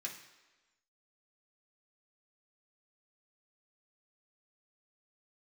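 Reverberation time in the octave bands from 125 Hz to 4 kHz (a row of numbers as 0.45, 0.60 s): 0.75, 1.1, 1.2, 1.2, 1.2, 1.1 s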